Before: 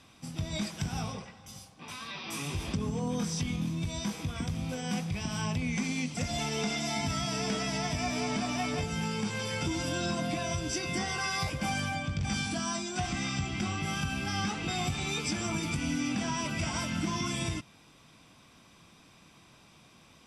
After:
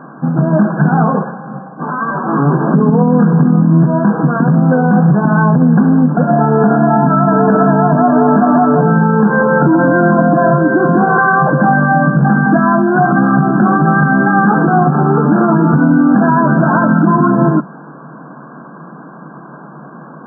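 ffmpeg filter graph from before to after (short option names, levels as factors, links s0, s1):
-filter_complex "[0:a]asettb=1/sr,asplit=3[s0][s1][s2];[s0]atrim=end=2.804[s3];[s1]atrim=start=2.8:end=3.33,asetpts=PTS-STARTPTS,afade=t=in:d=0.004:c=qsin,afade=t=out:st=0.526:d=0.004:c=qsin,acrossover=split=220|3000[s4][s5][s6];[s5]acompressor=threshold=0.0178:ratio=6:attack=3.2:release=140:knee=2.83:detection=peak[s7];[s4][s7][s6]amix=inputs=3:normalize=0,lowshelf=f=87:g=-5.5[s8];[s2]atrim=start=3.326[s9];[s3][s8]acrossfade=d=0.004:c1=hsin:c2=qsin[s10];[s10][s9]acrossfade=d=0.004:c1=qsin:c2=hsin,bandreject=f=185.9:t=h:w=4,bandreject=f=371.8:t=h:w=4,bandreject=f=557.7:t=h:w=4,afftfilt=real='re*between(b*sr/4096,130,1700)':imag='im*between(b*sr/4096,130,1700)':win_size=4096:overlap=0.75,alimiter=level_in=26.6:limit=0.891:release=50:level=0:latency=1,volume=0.891"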